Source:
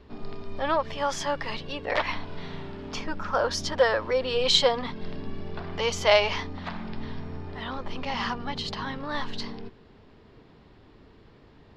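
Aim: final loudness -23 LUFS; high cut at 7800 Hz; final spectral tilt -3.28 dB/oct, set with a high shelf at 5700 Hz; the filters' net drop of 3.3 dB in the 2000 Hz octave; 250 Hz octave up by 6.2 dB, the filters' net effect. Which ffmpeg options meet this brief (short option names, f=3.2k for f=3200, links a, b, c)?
-af "lowpass=7.8k,equalizer=f=250:t=o:g=7.5,equalizer=f=2k:t=o:g=-3.5,highshelf=f=5.7k:g=-5,volume=5dB"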